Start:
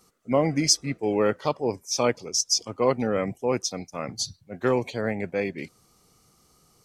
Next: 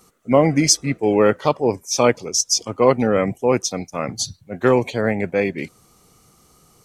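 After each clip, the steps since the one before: peaking EQ 4.9 kHz -5 dB 0.45 oct; trim +7.5 dB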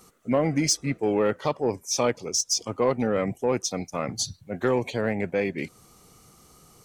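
compression 1.5:1, threshold -30 dBFS, peak gain reduction 8 dB; saturation -12 dBFS, distortion -21 dB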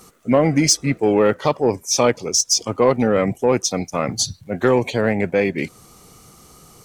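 crackle 190 per s -57 dBFS; trim +7.5 dB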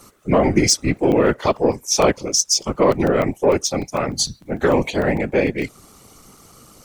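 whisper effect; crackling interface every 0.15 s, samples 128, zero, from 0.82 s

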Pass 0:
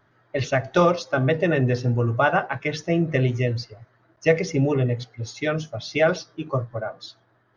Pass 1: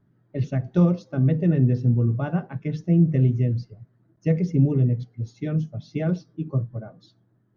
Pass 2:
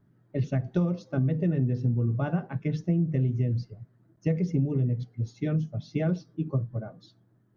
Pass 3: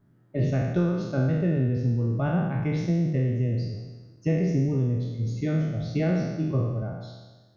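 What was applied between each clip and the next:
FFT filter 100 Hz 0 dB, 180 Hz +8 dB, 630 Hz -13 dB, 1.3 kHz -17 dB
compression 6:1, threshold -22 dBFS, peak gain reduction 9 dB
spectral sustain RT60 1.30 s

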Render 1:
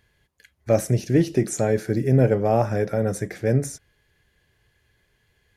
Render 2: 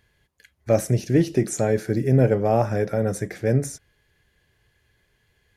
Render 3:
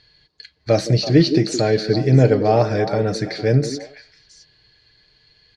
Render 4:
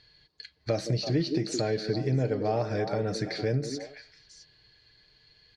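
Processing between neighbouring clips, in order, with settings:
no audible change
resonant low-pass 4.4 kHz, resonance Q 14; comb 6.5 ms, depth 39%; repeats whose band climbs or falls 166 ms, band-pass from 320 Hz, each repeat 1.4 oct, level -5.5 dB; trim +3 dB
compression 2.5:1, threshold -23 dBFS, peak gain reduction 10.5 dB; trim -4.5 dB

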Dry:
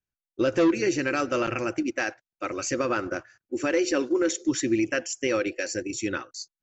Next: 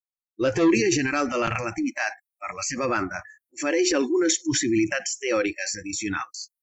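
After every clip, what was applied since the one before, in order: transient shaper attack -5 dB, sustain +7 dB; spectral noise reduction 28 dB; trim +3 dB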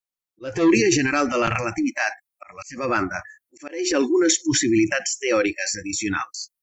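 slow attack 331 ms; trim +3.5 dB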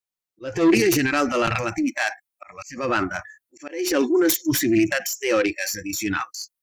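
self-modulated delay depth 0.1 ms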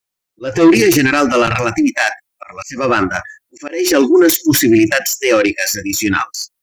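loudness maximiser +10.5 dB; trim -1 dB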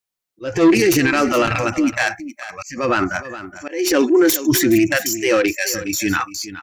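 delay 418 ms -14 dB; trim -4 dB

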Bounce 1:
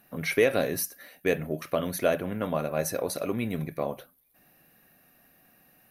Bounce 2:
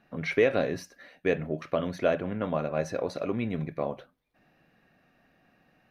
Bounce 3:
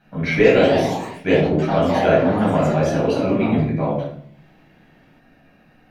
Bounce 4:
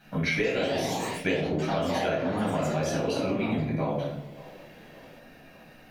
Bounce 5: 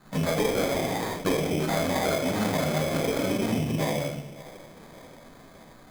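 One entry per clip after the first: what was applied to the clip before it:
distance through air 160 m
reverberation RT60 0.55 s, pre-delay 6 ms, DRR -6.5 dB; ever faster or slower copies 225 ms, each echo +3 st, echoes 3, each echo -6 dB
treble shelf 2.9 kHz +12 dB; compression 6:1, threshold -25 dBFS, peak gain reduction 16.5 dB; feedback echo behind a band-pass 577 ms, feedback 57%, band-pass 630 Hz, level -18 dB
low-pass 3.9 kHz 24 dB/octave; sample-rate reducer 2.8 kHz, jitter 0%; trim +1.5 dB

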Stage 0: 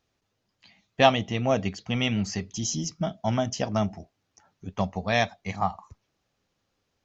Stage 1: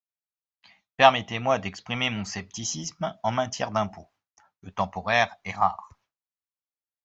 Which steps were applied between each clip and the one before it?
expander -55 dBFS; FFT filter 430 Hz 0 dB, 1 kHz +13 dB, 4.5 kHz +5 dB; trim -5.5 dB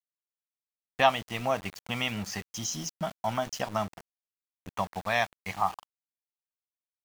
in parallel at +1 dB: compression 6:1, threshold -30 dBFS, peak gain reduction 18.5 dB; on the sum: small samples zeroed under -31.5 dBFS; trim -7.5 dB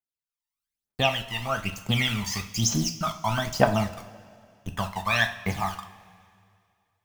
level rider gain up to 11.5 dB; phaser 1.1 Hz, delay 1.1 ms, feedback 80%; two-slope reverb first 0.39 s, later 2.3 s, from -17 dB, DRR 5 dB; trim -9 dB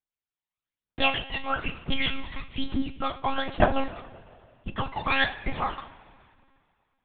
monotone LPC vocoder at 8 kHz 270 Hz

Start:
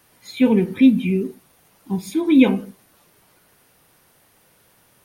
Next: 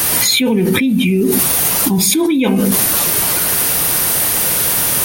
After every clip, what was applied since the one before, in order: treble shelf 4.3 kHz +11.5 dB; level flattener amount 100%; trim -5 dB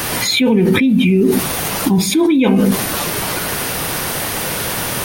peaking EQ 13 kHz -12 dB 1.7 oct; trim +1.5 dB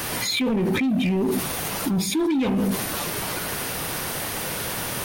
overload inside the chain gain 10.5 dB; trim -8 dB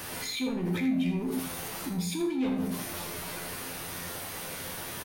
feedback comb 87 Hz, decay 0.45 s, harmonics all, mix 80%; on a send: delay 80 ms -10.5 dB; on the sum: trim -1.5 dB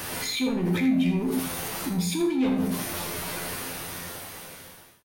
fade out at the end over 1.55 s; trim +5 dB

